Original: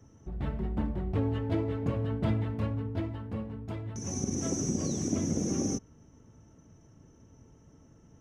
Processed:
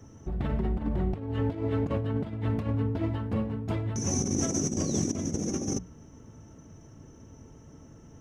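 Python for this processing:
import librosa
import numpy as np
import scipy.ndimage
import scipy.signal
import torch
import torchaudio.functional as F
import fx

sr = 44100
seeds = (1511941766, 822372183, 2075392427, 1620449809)

y = fx.hum_notches(x, sr, base_hz=60, count=3)
y = fx.over_compress(y, sr, threshold_db=-33.0, ratio=-0.5)
y = y * 10.0 ** (5.0 / 20.0)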